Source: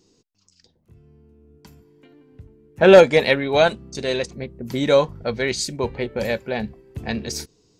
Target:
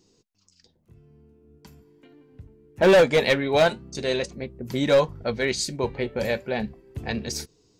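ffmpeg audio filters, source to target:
ffmpeg -i in.wav -af "volume=10.5dB,asoftclip=hard,volume=-10.5dB,flanger=delay=1:depth=6.7:regen=-78:speed=0.41:shape=triangular,volume=2.5dB" out.wav

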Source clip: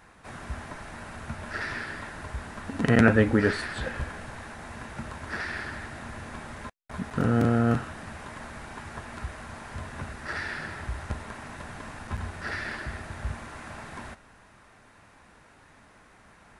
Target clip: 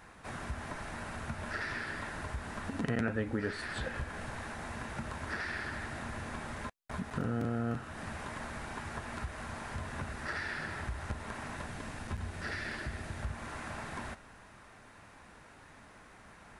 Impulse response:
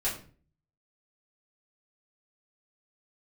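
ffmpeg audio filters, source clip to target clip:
-filter_complex "[0:a]asettb=1/sr,asplit=3[link_01][link_02][link_03];[link_01]atrim=end=11.664[link_04];[link_02]atrim=start=11.66:end=13.23,asetpts=PTS-STARTPTS,afade=type=in:duration=0.004:curve=qsin,afade=type=out:start_time=1.566:duration=0.004:curve=qsin,equalizer=frequency=1100:width_type=o:width=1.6:gain=-4.5[link_05];[link_03]atrim=start=13.226[link_06];[link_04][link_05]acrossfade=duration=0.004:curve1=hsin:curve2=qsin[link_07];[link_07][link_06]acrossfade=duration=0.004:curve1=qsin:curve2=hsin,acompressor=threshold=-36dB:ratio=2.5"

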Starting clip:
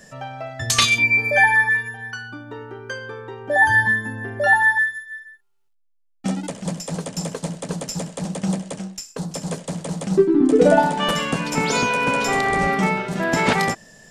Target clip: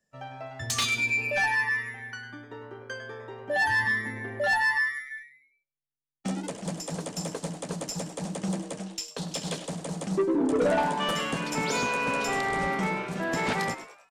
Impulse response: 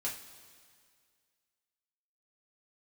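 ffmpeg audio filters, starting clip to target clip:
-filter_complex "[0:a]agate=range=-24dB:threshold=-37dB:ratio=16:detection=peak,asettb=1/sr,asplit=3[link_01][link_02][link_03];[link_01]atrim=end=8.864[link_04];[link_02]atrim=start=8.86:end=9.68,asetpts=PTS-STARTPTS,afade=type=in:duration=0.004:curve=qsin,afade=type=out:start_time=0.816:duration=0.004:curve=qsin,equalizer=frequency=3400:width_type=o:width=1.2:gain=12[link_05];[link_03]atrim=start=9.676[link_06];[link_04][link_05]acrossfade=duration=0.004:curve1=hsin:curve2=qsin[link_07];[link_07][link_06]acrossfade=duration=0.004:curve1=qsin:curve2=hsin,acrossover=split=230[link_08][link_09];[link_09]dynaudnorm=framelen=980:gausssize=7:maxgain=11.5dB[link_10];[link_08][link_10]amix=inputs=2:normalize=0,asoftclip=type=tanh:threshold=-12dB,asplit=5[link_11][link_12][link_13][link_14][link_15];[link_12]adelay=101,afreqshift=140,volume=-13dB[link_16];[link_13]adelay=202,afreqshift=280,volume=-20.1dB[link_17];[link_14]adelay=303,afreqshift=420,volume=-27.3dB[link_18];[link_15]adelay=404,afreqshift=560,volume=-34.4dB[link_19];[link_11][link_16][link_17][link_18][link_19]amix=inputs=5:normalize=0,volume=-8dB"

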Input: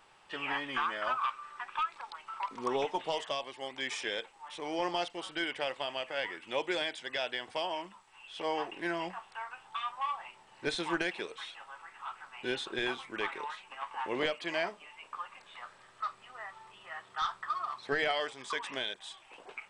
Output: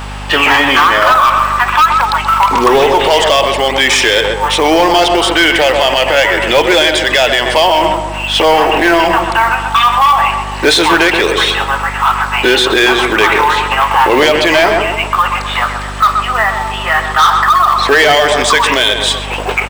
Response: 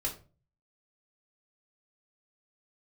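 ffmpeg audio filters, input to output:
-filter_complex "[0:a]highpass=280,asoftclip=type=tanh:threshold=-30dB,acrusher=bits=6:mode=log:mix=0:aa=0.000001,asplit=2[link_01][link_02];[link_02]adelay=128,lowpass=frequency=1900:poles=1,volume=-8dB,asplit=2[link_03][link_04];[link_04]adelay=128,lowpass=frequency=1900:poles=1,volume=0.5,asplit=2[link_05][link_06];[link_06]adelay=128,lowpass=frequency=1900:poles=1,volume=0.5,asplit=2[link_07][link_08];[link_08]adelay=128,lowpass=frequency=1900:poles=1,volume=0.5,asplit=2[link_09][link_10];[link_10]adelay=128,lowpass=frequency=1900:poles=1,volume=0.5,asplit=2[link_11][link_12];[link_12]adelay=128,lowpass=frequency=1900:poles=1,volume=0.5[link_13];[link_01][link_03][link_05][link_07][link_09][link_11][link_13]amix=inputs=7:normalize=0,aeval=exprs='val(0)+0.00141*(sin(2*PI*50*n/s)+sin(2*PI*2*50*n/s)/2+sin(2*PI*3*50*n/s)/3+sin(2*PI*4*50*n/s)/4+sin(2*PI*5*50*n/s)/5)':channel_layout=same,alimiter=level_in=34.5dB:limit=-1dB:release=50:level=0:latency=1,volume=-1dB"

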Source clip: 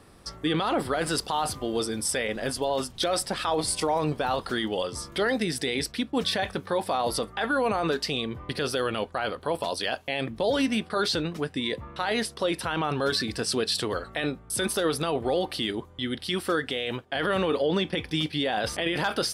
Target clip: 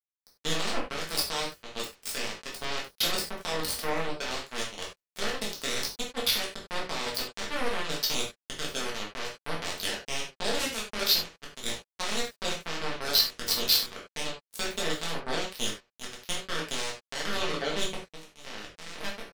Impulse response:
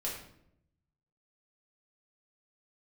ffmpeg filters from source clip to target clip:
-filter_complex "[0:a]asetnsamples=nb_out_samples=441:pad=0,asendcmd='17.95 equalizer g -11',equalizer=frequency=4400:width_type=o:width=0.75:gain=7,acrusher=bits=2:mix=0:aa=0.5[link_01];[1:a]atrim=start_sample=2205,afade=type=out:start_time=0.15:duration=0.01,atrim=end_sample=7056[link_02];[link_01][link_02]afir=irnorm=-1:irlink=0"

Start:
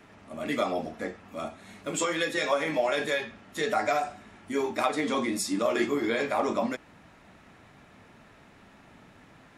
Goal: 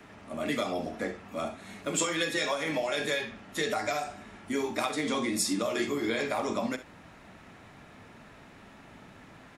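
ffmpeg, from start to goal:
ffmpeg -i in.wav -filter_complex "[0:a]acrossover=split=160|3000[link_01][link_02][link_03];[link_02]acompressor=threshold=-31dB:ratio=6[link_04];[link_01][link_04][link_03]amix=inputs=3:normalize=0,asplit=2[link_05][link_06];[link_06]aecho=0:1:47|66:0.158|0.188[link_07];[link_05][link_07]amix=inputs=2:normalize=0,volume=2.5dB" out.wav

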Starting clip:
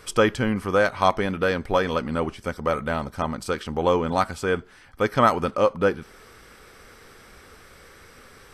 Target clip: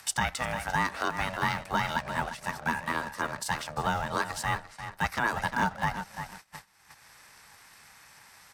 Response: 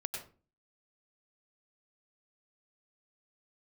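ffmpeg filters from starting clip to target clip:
-filter_complex "[0:a]asplit=2[link_01][link_02];[link_02]adelay=347,lowpass=frequency=4500:poles=1,volume=-12dB,asplit=2[link_03][link_04];[link_04]adelay=347,lowpass=frequency=4500:poles=1,volume=0.21,asplit=2[link_05][link_06];[link_06]adelay=347,lowpass=frequency=4500:poles=1,volume=0.21[link_07];[link_01][link_03][link_05][link_07]amix=inputs=4:normalize=0,asplit=2[link_08][link_09];[link_09]acrusher=bits=5:mix=0:aa=0.5,volume=-10.5dB[link_10];[link_08][link_10]amix=inputs=2:normalize=0,highpass=frequency=500:poles=1,equalizer=frequency=2800:width_type=o:width=0.74:gain=-6,aeval=exprs='val(0)*sin(2*PI*360*n/s)':channel_layout=same,afreqshift=18,alimiter=limit=-15.5dB:level=0:latency=1:release=94,tiltshelf=frequency=1300:gain=-4.5,agate=range=-23dB:threshold=-48dB:ratio=16:detection=peak,acompressor=mode=upward:threshold=-35dB:ratio=2.5"

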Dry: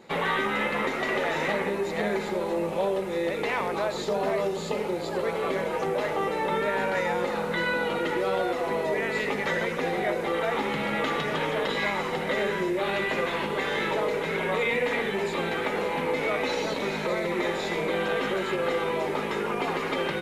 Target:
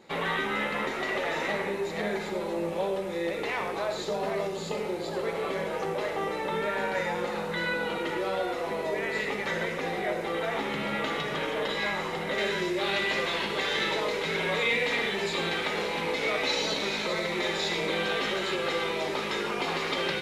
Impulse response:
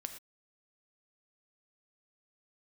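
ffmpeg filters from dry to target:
-filter_complex "[0:a]asetnsamples=nb_out_samples=441:pad=0,asendcmd='12.38 equalizer g 11.5',equalizer=frequency=4600:width=0.75:gain=3[link_01];[1:a]atrim=start_sample=2205[link_02];[link_01][link_02]afir=irnorm=-1:irlink=0,volume=-1dB"

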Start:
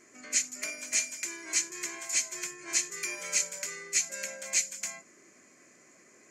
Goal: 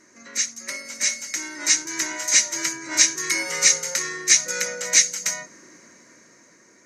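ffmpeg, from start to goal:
ffmpeg -i in.wav -af "asetrate=40517,aresample=44100,dynaudnorm=framelen=340:gausssize=9:maxgain=8.5dB,volume=3.5dB" out.wav

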